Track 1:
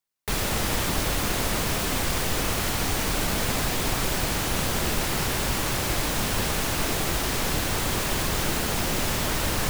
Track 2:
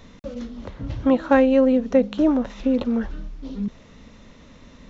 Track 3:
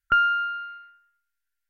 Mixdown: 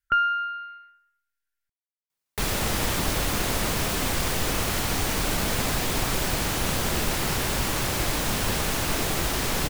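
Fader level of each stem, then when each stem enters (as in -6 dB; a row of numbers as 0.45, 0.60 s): 0.0 dB, off, -2.0 dB; 2.10 s, off, 0.00 s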